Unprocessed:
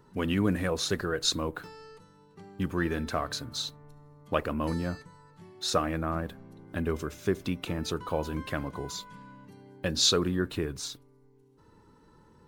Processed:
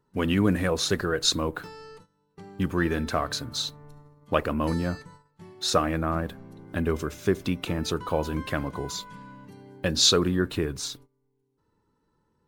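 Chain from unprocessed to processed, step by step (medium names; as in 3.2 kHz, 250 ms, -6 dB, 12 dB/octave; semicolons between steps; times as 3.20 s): gate -52 dBFS, range -17 dB; trim +4 dB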